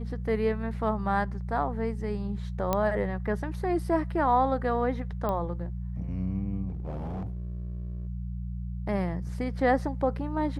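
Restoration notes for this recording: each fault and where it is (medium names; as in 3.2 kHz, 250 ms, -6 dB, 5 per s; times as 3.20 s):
hum 60 Hz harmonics 3 -34 dBFS
2.73 s: pop -12 dBFS
5.29 s: pop -19 dBFS
6.68–8.07 s: clipped -30.5 dBFS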